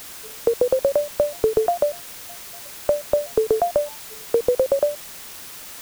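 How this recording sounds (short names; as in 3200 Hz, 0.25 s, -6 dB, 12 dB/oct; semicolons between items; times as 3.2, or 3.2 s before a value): a quantiser's noise floor 6-bit, dither triangular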